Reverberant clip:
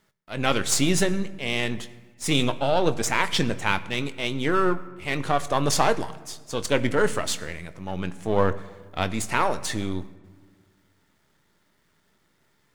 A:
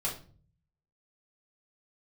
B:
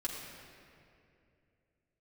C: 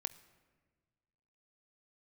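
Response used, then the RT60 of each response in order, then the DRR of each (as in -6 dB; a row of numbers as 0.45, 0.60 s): C; 0.40, 2.6, 1.5 s; -5.5, -5.5, 12.0 dB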